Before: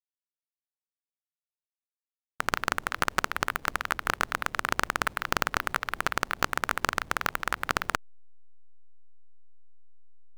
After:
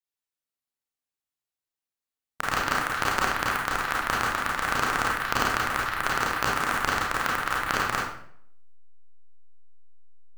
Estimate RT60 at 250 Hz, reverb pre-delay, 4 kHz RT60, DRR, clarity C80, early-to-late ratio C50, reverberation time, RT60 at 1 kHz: 0.65 s, 28 ms, 0.50 s, -4.0 dB, 5.5 dB, 0.5 dB, 0.65 s, 0.55 s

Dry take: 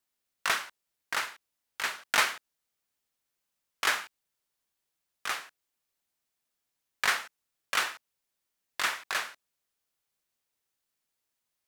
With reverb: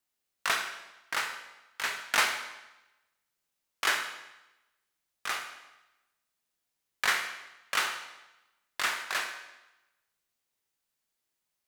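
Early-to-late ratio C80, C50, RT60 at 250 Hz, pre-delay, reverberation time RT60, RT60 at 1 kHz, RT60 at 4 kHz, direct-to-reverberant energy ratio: 10.0 dB, 7.5 dB, 1.0 s, 20 ms, 1.0 s, 1.0 s, 0.95 s, 5.0 dB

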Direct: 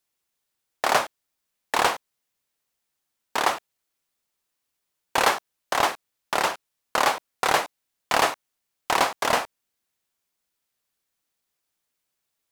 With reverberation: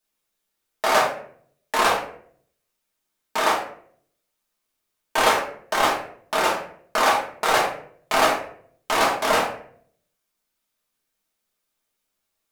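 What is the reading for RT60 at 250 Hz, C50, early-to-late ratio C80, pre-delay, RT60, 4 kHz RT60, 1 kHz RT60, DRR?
0.70 s, 6.0 dB, 9.5 dB, 3 ms, 0.60 s, 0.35 s, 0.50 s, -4.5 dB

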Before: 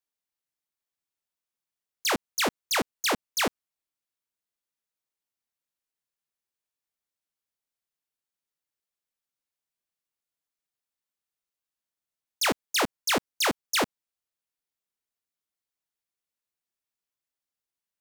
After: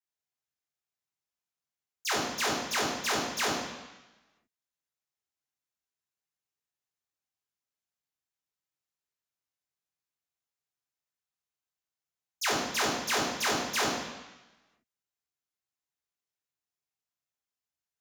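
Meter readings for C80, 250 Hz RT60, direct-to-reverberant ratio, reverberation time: 4.5 dB, 1.1 s, -2.5 dB, 1.1 s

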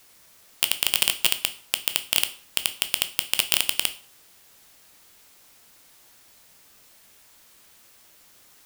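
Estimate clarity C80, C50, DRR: 20.0 dB, 15.0 dB, 9.0 dB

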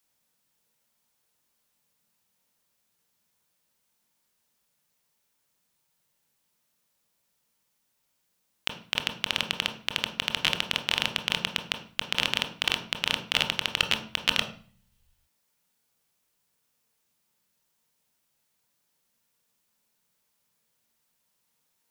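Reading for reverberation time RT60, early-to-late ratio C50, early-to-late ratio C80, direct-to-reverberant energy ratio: 0.40 s, 9.0 dB, 13.0 dB, 3.5 dB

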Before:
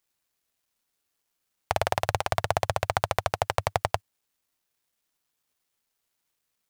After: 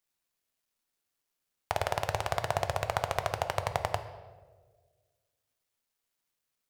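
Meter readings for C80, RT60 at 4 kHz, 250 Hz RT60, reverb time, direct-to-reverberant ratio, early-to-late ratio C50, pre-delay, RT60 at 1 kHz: 12.0 dB, 0.90 s, 1.5 s, 1.5 s, 8.0 dB, 10.5 dB, 3 ms, 1.2 s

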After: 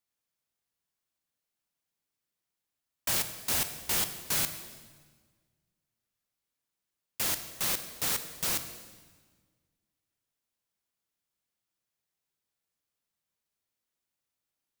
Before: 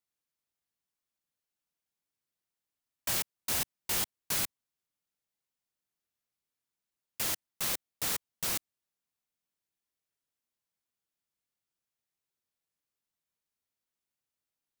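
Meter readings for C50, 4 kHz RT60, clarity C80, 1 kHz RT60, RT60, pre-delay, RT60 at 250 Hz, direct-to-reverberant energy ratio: 10.0 dB, 1.3 s, 11.0 dB, 1.4 s, 1.5 s, 20 ms, 1.8 s, 9.0 dB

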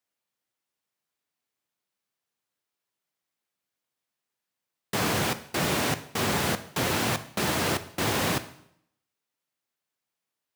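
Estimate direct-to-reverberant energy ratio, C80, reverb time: 10.5 dB, 17.5 dB, 0.70 s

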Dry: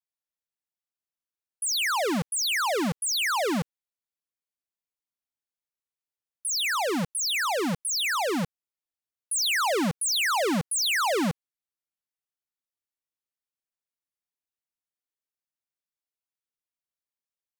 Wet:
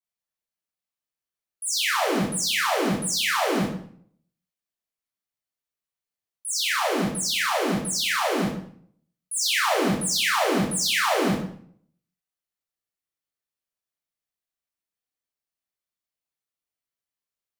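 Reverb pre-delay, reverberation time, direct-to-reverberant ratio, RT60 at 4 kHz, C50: 16 ms, 0.55 s, -6.0 dB, 0.45 s, 3.0 dB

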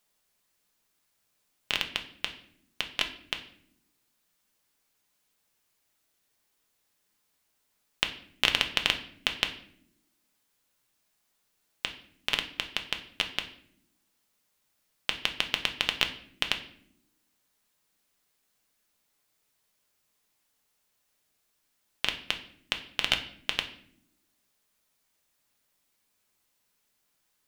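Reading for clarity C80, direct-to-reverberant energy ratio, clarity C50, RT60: 15.0 dB, 5.0 dB, 12.0 dB, not exponential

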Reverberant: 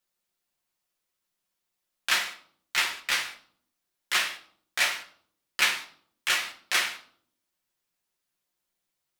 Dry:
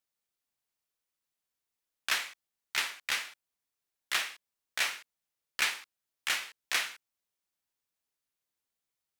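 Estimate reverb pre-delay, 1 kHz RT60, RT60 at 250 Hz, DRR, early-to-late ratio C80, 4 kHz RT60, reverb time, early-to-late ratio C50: 6 ms, 0.55 s, 0.85 s, 0.0 dB, 15.5 dB, 0.45 s, 0.60 s, 12.5 dB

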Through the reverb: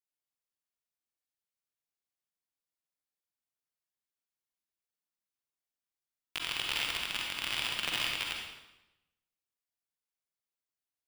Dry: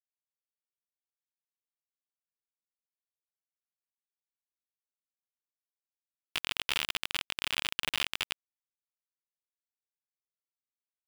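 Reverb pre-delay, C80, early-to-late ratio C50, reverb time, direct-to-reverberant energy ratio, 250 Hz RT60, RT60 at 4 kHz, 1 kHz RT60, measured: 39 ms, 3.5 dB, 0.0 dB, 0.95 s, -1.5 dB, 1.1 s, 0.85 s, 0.95 s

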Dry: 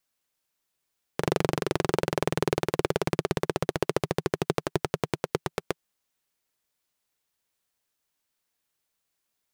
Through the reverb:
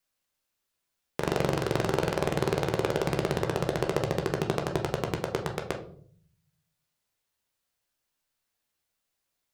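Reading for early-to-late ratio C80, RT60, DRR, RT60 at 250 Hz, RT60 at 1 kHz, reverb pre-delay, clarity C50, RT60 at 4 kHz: 14.5 dB, 0.55 s, 2.0 dB, 0.95 s, 0.45 s, 13 ms, 10.0 dB, 0.35 s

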